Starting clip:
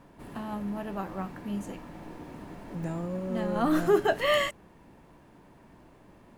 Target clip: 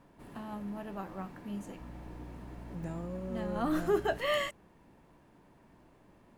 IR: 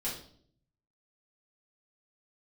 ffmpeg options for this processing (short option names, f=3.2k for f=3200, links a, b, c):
-filter_complex "[0:a]asettb=1/sr,asplit=3[a][b][c];[a]atrim=end=1.804[d];[b]atrim=start=1.8:end=4.18,asetpts=PTS-STARTPTS,afade=t=in:d=0.004:c=qsin,afade=t=out:st=2.376:d=0.004:c=qsin,aeval=exprs='val(0)+0.01*(sin(2*PI*60*n/s)+sin(2*PI*2*60*n/s)/2+sin(2*PI*3*60*n/s)/3+sin(2*PI*4*60*n/s)/4+sin(2*PI*5*60*n/s)/5)':c=same[e];[c]atrim=start=4.176[f];[d][e]acrossfade=d=0.004:c1=hsin:c2=qsin[g];[g][f]acrossfade=d=0.004:c1=qsin:c2=hsin,volume=-6dB"